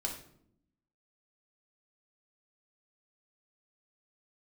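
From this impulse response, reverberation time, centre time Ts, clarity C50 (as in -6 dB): 0.70 s, 23 ms, 6.5 dB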